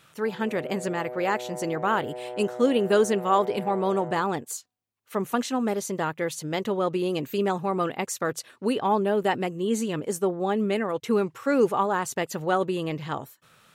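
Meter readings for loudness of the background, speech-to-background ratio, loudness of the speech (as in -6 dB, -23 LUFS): -37.5 LUFS, 11.0 dB, -26.5 LUFS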